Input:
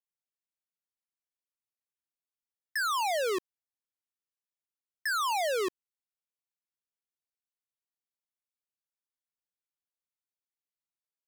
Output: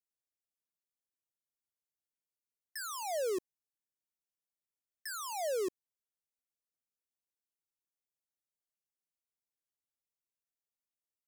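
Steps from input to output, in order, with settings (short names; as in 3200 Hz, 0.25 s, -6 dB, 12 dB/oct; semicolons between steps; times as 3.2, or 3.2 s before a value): band shelf 1900 Hz -11 dB 2.6 oct; gain -3 dB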